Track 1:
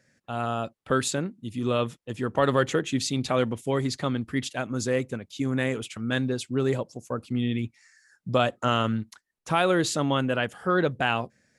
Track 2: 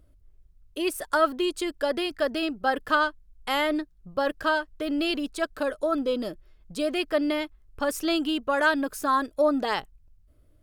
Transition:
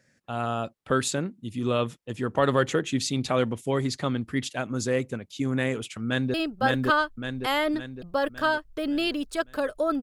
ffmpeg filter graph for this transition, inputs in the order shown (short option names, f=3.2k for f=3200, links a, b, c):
-filter_complex "[0:a]apad=whole_dur=10.02,atrim=end=10.02,atrim=end=6.342[a];[1:a]atrim=start=2.368:end=6.05[b];[a][b]acrossfade=d=0.004:c1=hsin:c2=hsin,asplit=2[c][d];[d]afade=t=in:st=6.05:d=0.01,afade=t=out:st=6.34:d=0.01,aecho=0:1:560|1120|1680|2240|2800|3360|3920:0.944061|0.47203|0.236015|0.118008|0.0590038|0.0295019|0.014751[e];[c][e]amix=inputs=2:normalize=0"